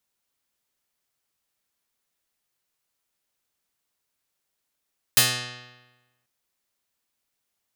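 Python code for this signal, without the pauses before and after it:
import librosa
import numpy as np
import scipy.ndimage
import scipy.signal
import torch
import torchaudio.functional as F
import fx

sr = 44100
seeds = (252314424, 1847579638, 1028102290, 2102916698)

y = fx.pluck(sr, length_s=1.09, note=47, decay_s=1.16, pick=0.37, brightness='medium')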